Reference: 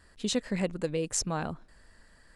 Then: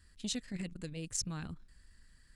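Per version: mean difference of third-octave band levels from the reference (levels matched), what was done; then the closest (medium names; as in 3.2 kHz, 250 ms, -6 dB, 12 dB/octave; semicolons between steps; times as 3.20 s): 4.0 dB: amplifier tone stack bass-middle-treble 6-0-2; transformer saturation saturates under 680 Hz; trim +11.5 dB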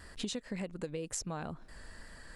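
7.0 dB: compression 10:1, threshold -43 dBFS, peak gain reduction 19.5 dB; wow and flutter 23 cents; trim +7.5 dB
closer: first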